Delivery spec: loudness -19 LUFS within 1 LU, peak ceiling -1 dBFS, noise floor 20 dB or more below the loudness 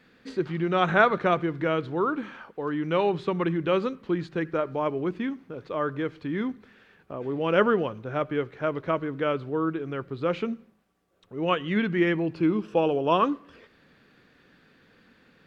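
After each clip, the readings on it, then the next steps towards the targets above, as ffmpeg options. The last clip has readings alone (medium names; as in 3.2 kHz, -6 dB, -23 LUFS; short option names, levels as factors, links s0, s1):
loudness -27.0 LUFS; peak level -5.5 dBFS; loudness target -19.0 LUFS
-> -af "volume=2.51,alimiter=limit=0.891:level=0:latency=1"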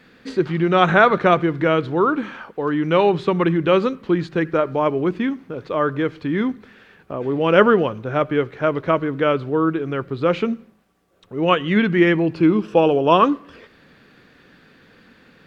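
loudness -19.0 LUFS; peak level -1.0 dBFS; noise floor -53 dBFS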